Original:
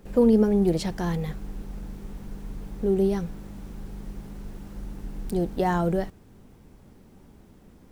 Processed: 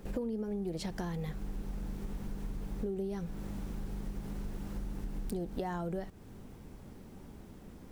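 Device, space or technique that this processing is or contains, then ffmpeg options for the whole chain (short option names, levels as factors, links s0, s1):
serial compression, leveller first: -af "acompressor=threshold=0.0631:ratio=2.5,acompressor=threshold=0.0158:ratio=5,volume=1.19"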